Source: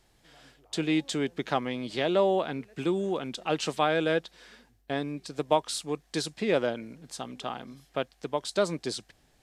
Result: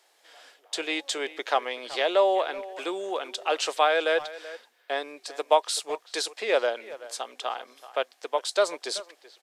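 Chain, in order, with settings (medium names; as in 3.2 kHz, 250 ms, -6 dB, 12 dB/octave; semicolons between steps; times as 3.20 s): high-pass 470 Hz 24 dB/octave; speakerphone echo 380 ms, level -16 dB; trim +4.5 dB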